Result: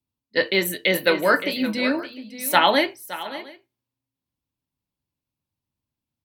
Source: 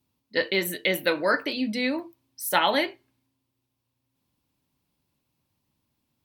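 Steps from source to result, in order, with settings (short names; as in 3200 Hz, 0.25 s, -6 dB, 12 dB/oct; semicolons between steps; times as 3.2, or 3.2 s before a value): on a send: tapped delay 0.569/0.707 s -11/-18 dB; on the sum: three-band expander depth 40%; gain +4 dB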